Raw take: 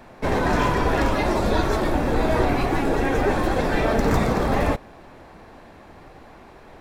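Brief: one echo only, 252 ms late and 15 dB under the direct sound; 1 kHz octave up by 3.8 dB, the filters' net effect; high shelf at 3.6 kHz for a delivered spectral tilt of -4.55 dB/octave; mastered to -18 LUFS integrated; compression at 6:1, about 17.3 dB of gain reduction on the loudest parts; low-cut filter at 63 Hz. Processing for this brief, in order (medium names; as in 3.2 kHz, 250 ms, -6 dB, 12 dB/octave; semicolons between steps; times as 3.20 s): high-pass 63 Hz; peaking EQ 1 kHz +4.5 dB; treble shelf 3.6 kHz +3.5 dB; compression 6:1, threshold -35 dBFS; delay 252 ms -15 dB; trim +20 dB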